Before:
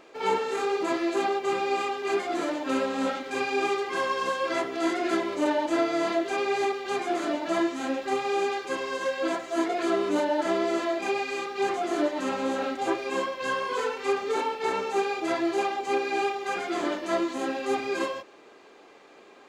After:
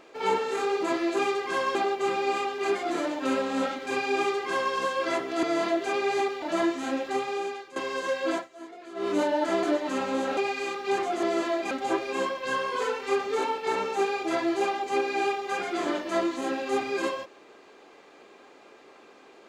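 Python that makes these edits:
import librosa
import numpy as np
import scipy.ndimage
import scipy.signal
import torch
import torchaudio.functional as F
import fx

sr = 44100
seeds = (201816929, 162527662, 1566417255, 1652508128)

y = fx.edit(x, sr, fx.duplicate(start_s=3.62, length_s=0.56, to_s=1.19),
    fx.cut(start_s=4.87, length_s=1.0),
    fx.cut(start_s=6.86, length_s=0.53),
    fx.fade_out_to(start_s=8.03, length_s=0.7, floor_db=-16.0),
    fx.fade_down_up(start_s=9.32, length_s=0.73, db=-17.0, fade_s=0.13),
    fx.swap(start_s=10.6, length_s=0.48, other_s=11.94, other_length_s=0.74), tone=tone)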